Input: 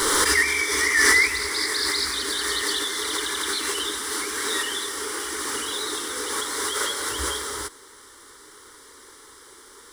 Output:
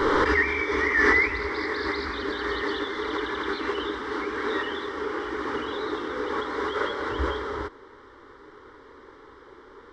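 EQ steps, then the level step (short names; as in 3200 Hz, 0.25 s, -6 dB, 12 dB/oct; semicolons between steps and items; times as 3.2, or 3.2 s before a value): air absorption 50 m; tape spacing loss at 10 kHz 43 dB; bell 660 Hz +2 dB; +6.0 dB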